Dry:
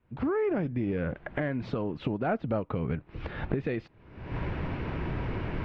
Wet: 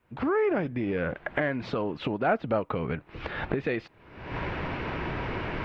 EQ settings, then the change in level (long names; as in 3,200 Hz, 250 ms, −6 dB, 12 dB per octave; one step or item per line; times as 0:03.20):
low-shelf EQ 330 Hz −11 dB
+7.0 dB